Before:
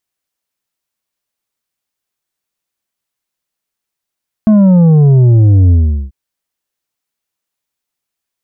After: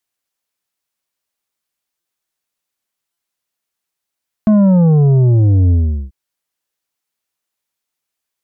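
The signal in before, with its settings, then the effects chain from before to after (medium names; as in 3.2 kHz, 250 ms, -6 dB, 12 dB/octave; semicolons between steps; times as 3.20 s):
sub drop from 220 Hz, over 1.64 s, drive 6.5 dB, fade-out 0.40 s, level -4.5 dB
bass shelf 330 Hz -4 dB; wow and flutter 26 cents; buffer glitch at 2.00/3.12 s, samples 256, times 8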